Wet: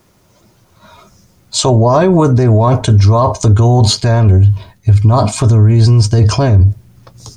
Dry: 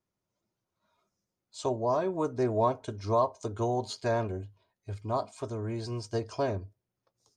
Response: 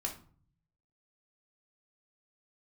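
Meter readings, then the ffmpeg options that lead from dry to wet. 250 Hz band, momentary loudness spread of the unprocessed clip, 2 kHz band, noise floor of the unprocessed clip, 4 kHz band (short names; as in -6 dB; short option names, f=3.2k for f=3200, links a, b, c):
+20.5 dB, 13 LU, +17.0 dB, under -85 dBFS, +25.0 dB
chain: -af "asubboost=boost=6:cutoff=180,areverse,acompressor=threshold=-33dB:ratio=4,areverse,alimiter=level_in=35dB:limit=-1dB:release=50:level=0:latency=1,volume=-1dB"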